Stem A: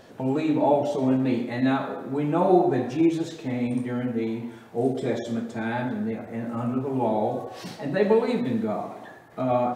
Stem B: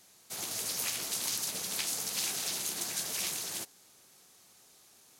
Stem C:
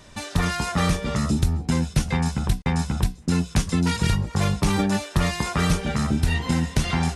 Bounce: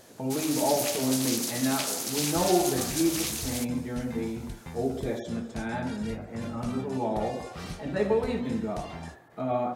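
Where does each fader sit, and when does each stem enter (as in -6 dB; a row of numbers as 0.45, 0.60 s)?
-5.0, +2.5, -18.5 dB; 0.00, 0.00, 2.00 s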